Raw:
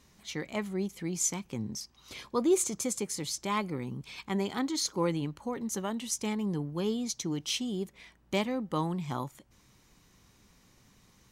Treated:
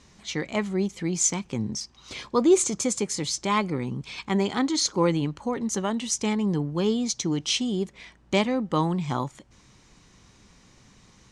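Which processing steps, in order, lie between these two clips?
LPF 8400 Hz 24 dB/oct; gain +7 dB

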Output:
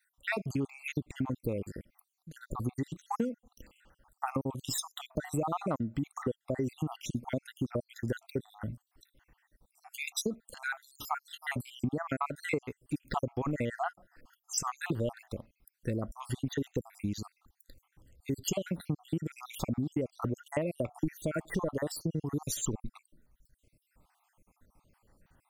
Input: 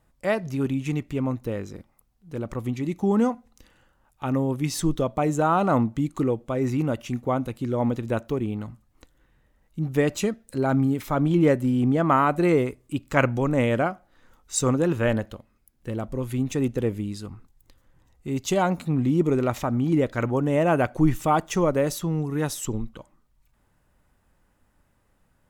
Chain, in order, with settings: random spectral dropouts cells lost 66%; high shelf 7300 Hz +4 dB; compressor 10:1, threshold -30 dBFS, peak gain reduction 15.5 dB; gain +1.5 dB

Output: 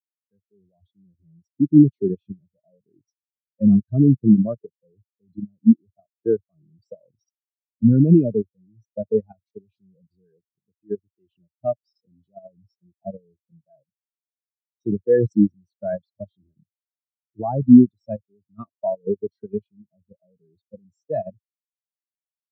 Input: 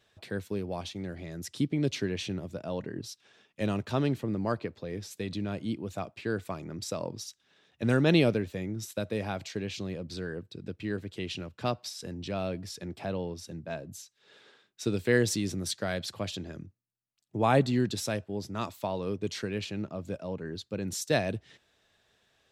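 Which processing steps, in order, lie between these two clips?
AGC gain up to 10 dB; 10.28–12.53 low shelf 180 Hz -2.5 dB; level quantiser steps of 11 dB; high shelf 3300 Hz +4 dB; spectral expander 4:1; gain +7 dB

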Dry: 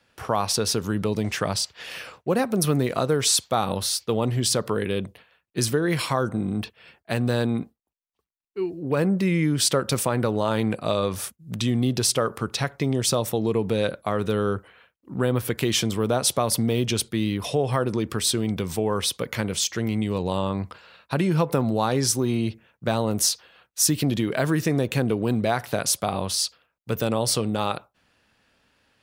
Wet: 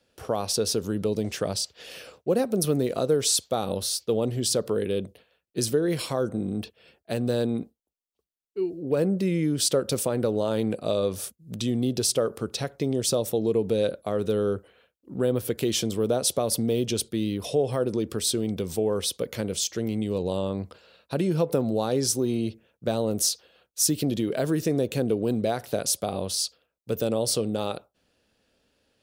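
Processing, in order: graphic EQ 125/500/1000/2000 Hz -4/+5/-8/-7 dB; gain -2 dB

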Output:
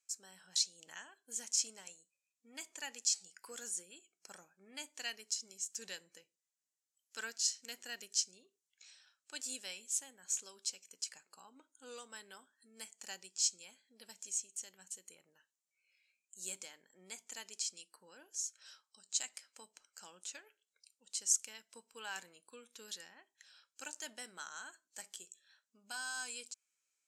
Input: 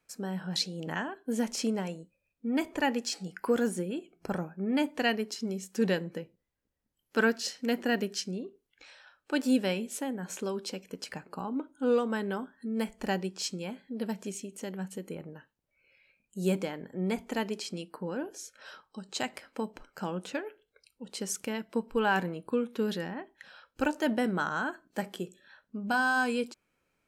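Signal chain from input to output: band-pass 7100 Hz, Q 2.9; gain +7.5 dB

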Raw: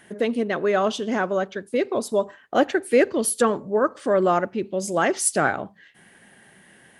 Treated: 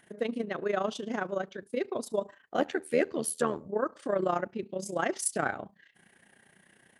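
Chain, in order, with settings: AM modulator 27 Hz, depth 60%, from 2.57 s modulator 79 Hz, from 3.67 s modulator 30 Hz; gain -6 dB

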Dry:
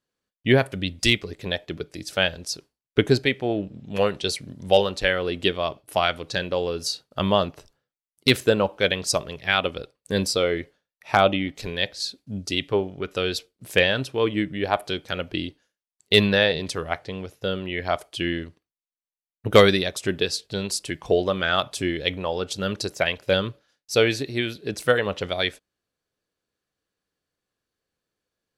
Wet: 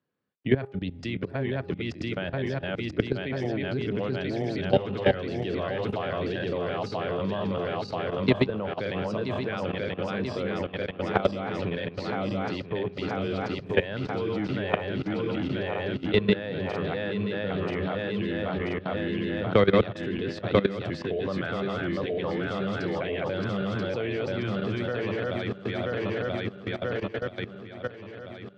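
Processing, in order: regenerating reverse delay 0.492 s, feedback 75%, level -1.5 dB; HPF 96 Hz 24 dB/oct; bell 580 Hz -3 dB 1.8 oct; de-hum 406.1 Hz, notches 3; level quantiser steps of 16 dB; tape spacing loss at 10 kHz 40 dB; three-band squash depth 40%; gain +5.5 dB

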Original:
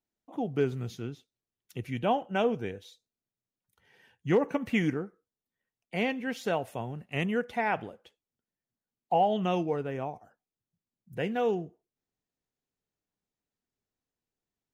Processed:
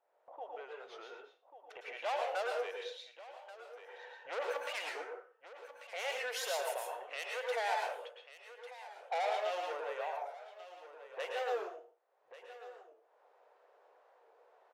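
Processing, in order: opening faded in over 2.00 s; soft clip -29.5 dBFS, distortion -8 dB; limiter -36.5 dBFS, peak gain reduction 7 dB; elliptic high-pass 520 Hz, stop band 60 dB; low-pass opened by the level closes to 810 Hz, open at -43 dBFS; high shelf 8800 Hz +7 dB; echo 1.141 s -22.5 dB; upward compressor, threshold -50 dBFS; reverb RT60 0.35 s, pre-delay 0.102 s, DRR 0.5 dB; record warp 45 rpm, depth 100 cents; gain +5.5 dB

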